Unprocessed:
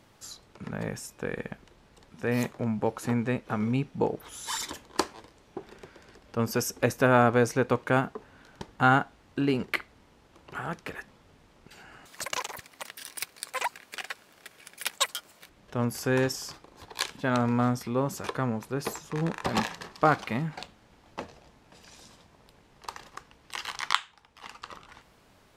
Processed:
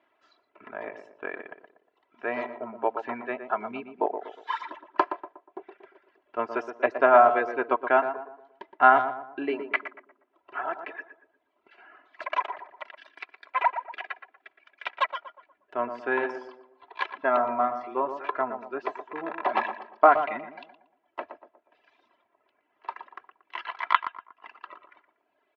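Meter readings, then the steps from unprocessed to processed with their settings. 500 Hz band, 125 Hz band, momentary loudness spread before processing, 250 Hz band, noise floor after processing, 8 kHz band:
+2.5 dB, below −25 dB, 20 LU, −8.5 dB, −74 dBFS, below −30 dB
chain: reverb reduction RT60 1.4 s
low-pass filter 2,700 Hz 24 dB per octave
noise gate −54 dBFS, range −6 dB
high-pass filter 470 Hz 12 dB per octave
comb filter 3 ms, depth 70%
dynamic equaliser 790 Hz, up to +8 dB, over −43 dBFS, Q 0.79
tape delay 118 ms, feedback 47%, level −7 dB, low-pass 1,200 Hz
level −1 dB

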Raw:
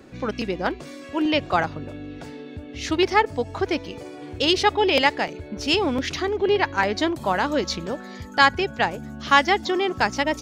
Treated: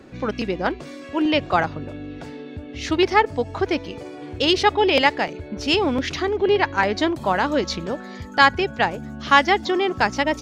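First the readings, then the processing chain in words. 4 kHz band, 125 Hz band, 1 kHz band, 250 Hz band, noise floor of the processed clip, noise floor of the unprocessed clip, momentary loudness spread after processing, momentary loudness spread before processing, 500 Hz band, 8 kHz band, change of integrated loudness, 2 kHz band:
+0.5 dB, +2.0 dB, +2.0 dB, +2.0 dB, −38 dBFS, −40 dBFS, 17 LU, 17 LU, +2.0 dB, −1.5 dB, +1.5 dB, +1.5 dB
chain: high-shelf EQ 7,400 Hz −8 dB
level +2 dB

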